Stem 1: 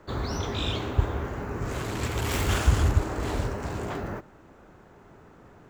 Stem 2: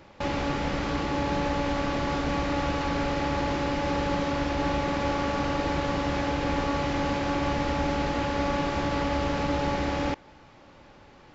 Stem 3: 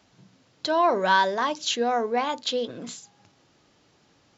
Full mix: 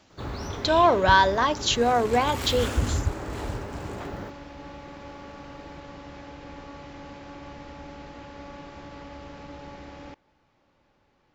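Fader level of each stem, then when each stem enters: −4.0, −15.0, +2.5 decibels; 0.10, 0.00, 0.00 seconds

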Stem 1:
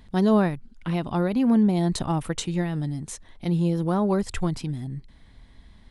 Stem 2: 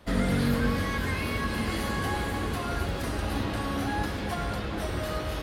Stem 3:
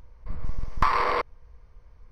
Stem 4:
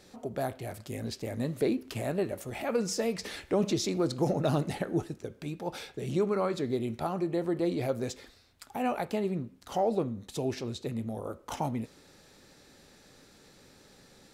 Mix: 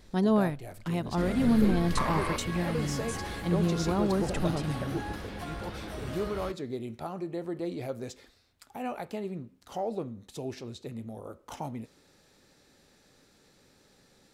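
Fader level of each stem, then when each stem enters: −5.0, −8.0, −9.0, −5.0 decibels; 0.00, 1.10, 1.15, 0.00 seconds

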